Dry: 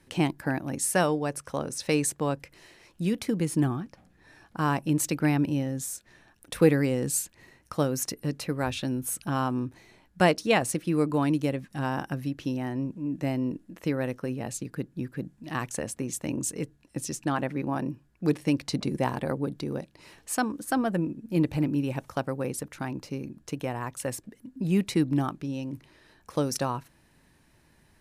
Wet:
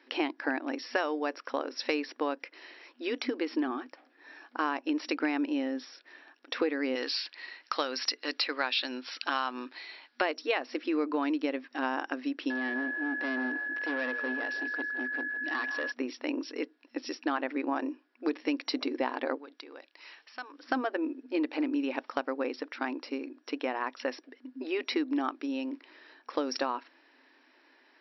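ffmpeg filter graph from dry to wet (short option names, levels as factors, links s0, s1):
-filter_complex "[0:a]asettb=1/sr,asplit=3[s0][s1][s2];[s0]atrim=end=6.954[s3];[s1]atrim=start=6.95:end=10.21,asetpts=PTS-STARTPTS,afade=t=in:d=0.004:c=qsin,afade=t=out:st=3.256:d=0.004:c=qsin,highpass=f=1400:p=1,highshelf=f=6000:t=q:w=3:g=-10,acontrast=86[s4];[s2]atrim=start=10.206[s5];[s3][s4]acrossfade=d=0.004:c1=hsin:c2=qsin[s6];[s6][s5]acrossfade=d=0.004:c1=qsin:c2=hsin,asettb=1/sr,asplit=3[s7][s8][s9];[s7]atrim=end=12.504[s10];[s8]atrim=start=12.5:end=15.92,asetpts=PTS-STARTPTS,afade=t=in:d=0.004:c=qsin,afade=t=out:st=3.416:d=0.004:c=qsin,asoftclip=type=hard:threshold=0.0251,aeval=exprs='val(0)+0.0126*sin(2*PI*1700*n/s)':c=same,asplit=5[s11][s12][s13][s14][s15];[s12]adelay=161,afreqshift=-50,volume=0.266[s16];[s13]adelay=322,afreqshift=-100,volume=0.106[s17];[s14]adelay=483,afreqshift=-150,volume=0.0427[s18];[s15]adelay=644,afreqshift=-200,volume=0.017[s19];[s11][s16][s17][s18][s19]amix=inputs=5:normalize=0,atrim=end_sample=150822[s20];[s9]atrim=start=15.916[s21];[s10][s20]acrossfade=d=0.004:c1=hsin:c2=qsin[s22];[s22][s21]acrossfade=d=0.004:c1=qsin:c2=hsin,asettb=1/sr,asplit=3[s23][s24][s25];[s23]atrim=end=19.384[s26];[s24]atrim=start=19.38:end=20.63,asetpts=PTS-STARTPTS,afade=t=in:d=0.004:c=qsin,afade=t=out:st=1.246:d=0.004:c=qsin,highpass=f=1400:p=1,acompressor=threshold=0.00447:ratio=2:attack=3.2:release=140:knee=1:detection=peak[s27];[s25]atrim=start=20.626[s28];[s26][s27]acrossfade=d=0.004:c1=hsin:c2=qsin[s29];[s29][s28]acrossfade=d=0.004:c1=qsin:c2=hsin,afftfilt=real='re*between(b*sr/4096,240,5700)':imag='im*between(b*sr/4096,240,5700)':win_size=4096:overlap=0.75,equalizer=f=1800:t=o:w=2.1:g=5.5,acompressor=threshold=0.0501:ratio=6"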